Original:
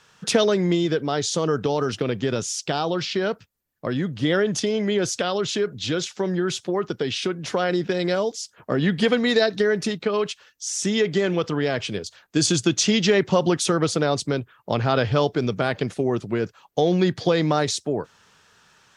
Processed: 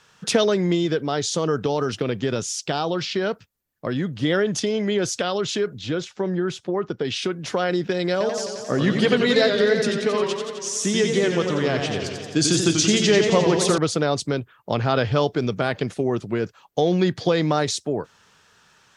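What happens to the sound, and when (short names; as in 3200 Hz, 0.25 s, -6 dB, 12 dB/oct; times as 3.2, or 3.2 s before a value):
5.81–7.05 high shelf 3000 Hz -10.5 dB
8.11–13.78 warbling echo 88 ms, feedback 74%, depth 132 cents, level -6 dB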